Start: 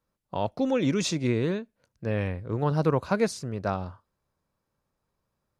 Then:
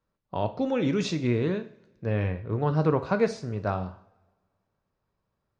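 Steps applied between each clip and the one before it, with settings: distance through air 120 m; two-slope reverb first 0.46 s, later 1.6 s, from -21 dB, DRR 8 dB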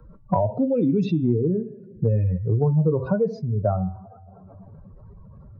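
spectral contrast enhancement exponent 2.6; de-hum 126.5 Hz, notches 29; three bands compressed up and down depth 100%; trim +5 dB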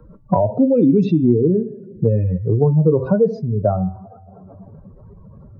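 peaking EQ 330 Hz +8 dB 2.6 oct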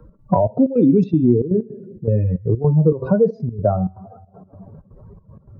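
trance gate "x.xxx.x.xx" 159 bpm -12 dB

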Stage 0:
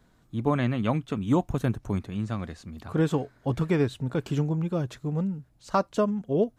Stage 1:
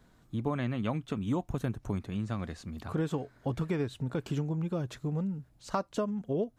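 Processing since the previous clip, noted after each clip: compression 2.5:1, threshold -31 dBFS, peak gain reduction 9 dB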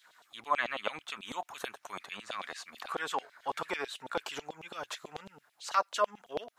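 LFO high-pass saw down 9.1 Hz 640–3600 Hz; trim +5.5 dB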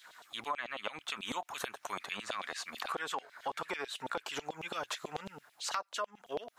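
compression 8:1, threshold -40 dBFS, peak gain reduction 18 dB; trim +6 dB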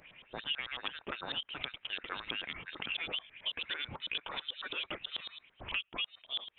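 frequency inversion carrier 3.9 kHz

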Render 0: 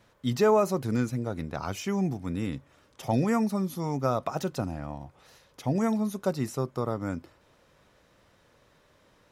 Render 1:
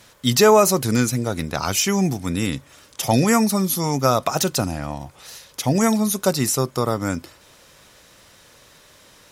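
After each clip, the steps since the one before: peaking EQ 11 kHz +15 dB 3 oct; trim +7.5 dB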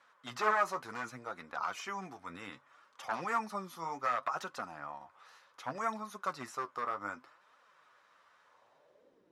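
one-sided wavefolder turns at -12 dBFS; flange 0.66 Hz, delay 3.4 ms, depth 9.4 ms, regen +42%; band-pass sweep 1.2 kHz -> 330 Hz, 8.43–9.24 s; trim -2 dB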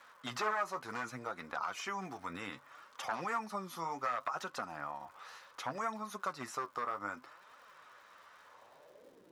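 compression 2:1, threshold -48 dBFS, peak gain reduction 13 dB; crackle 200 per s -63 dBFS; trim +7 dB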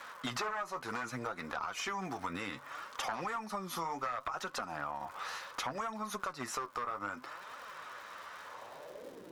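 compression 6:1, threshold -45 dBFS, peak gain reduction 15 dB; valve stage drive 35 dB, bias 0.3; trim +11.5 dB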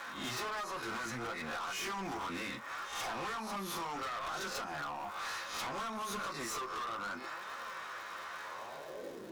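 reverse spectral sustain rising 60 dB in 0.39 s; on a send at -3.5 dB: reverberation, pre-delay 3 ms; on the sum: hard clipper -37.5 dBFS, distortion -7 dB; trim +1 dB

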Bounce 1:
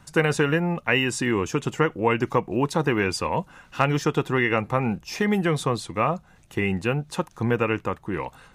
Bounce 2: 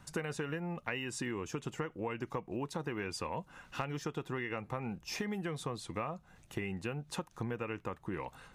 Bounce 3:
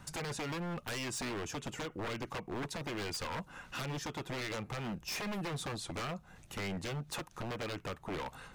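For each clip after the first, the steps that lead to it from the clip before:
compression 6:1, threshold -30 dBFS, peak gain reduction 14.5 dB; trim -5 dB
wavefolder -37 dBFS; trim +4 dB

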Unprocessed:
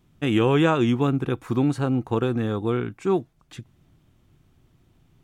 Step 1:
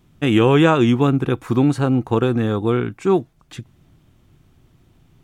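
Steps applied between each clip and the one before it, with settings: de-esser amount 55%; trim +5.5 dB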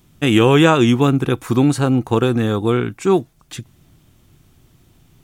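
treble shelf 4.4 kHz +10.5 dB; trim +1.5 dB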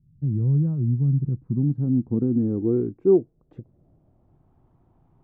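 low-pass sweep 140 Hz -> 880 Hz, 1.10–4.58 s; trim -8.5 dB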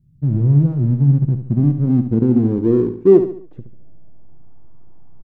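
in parallel at -6 dB: hysteresis with a dead band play -21 dBFS; on the sum: feedback delay 71 ms, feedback 40%, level -9.5 dB; trim +4 dB

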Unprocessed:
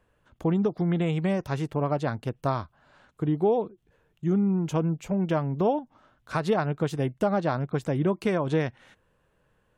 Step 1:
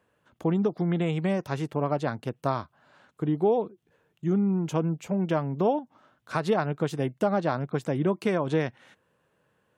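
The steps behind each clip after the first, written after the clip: high-pass 130 Hz 12 dB/octave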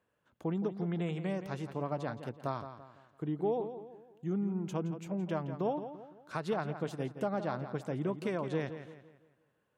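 filtered feedback delay 169 ms, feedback 41%, low-pass 5 kHz, level -10.5 dB; trim -9 dB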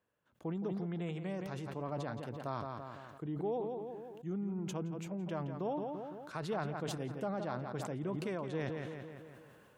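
decay stretcher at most 25 dB/s; trim -5 dB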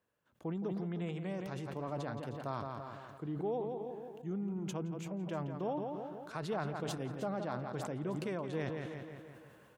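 delay 310 ms -13.5 dB

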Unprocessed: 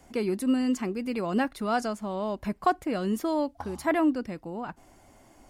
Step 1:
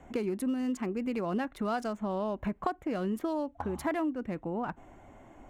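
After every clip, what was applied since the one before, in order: local Wiener filter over 9 samples; compression 5:1, threshold -33 dBFS, peak gain reduction 13.5 dB; trim +3.5 dB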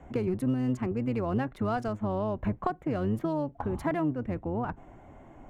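octave divider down 1 oct, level -3 dB; treble shelf 3.1 kHz -9 dB; trim +2 dB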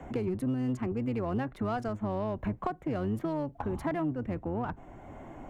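in parallel at -4 dB: saturation -27.5 dBFS, distortion -12 dB; on the sum: three bands compressed up and down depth 40%; trim -5.5 dB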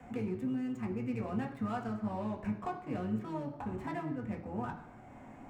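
median filter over 9 samples; reverberation RT60 1.0 s, pre-delay 3 ms, DRR 0.5 dB; trim -4 dB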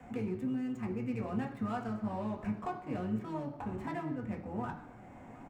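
delay 715 ms -19 dB

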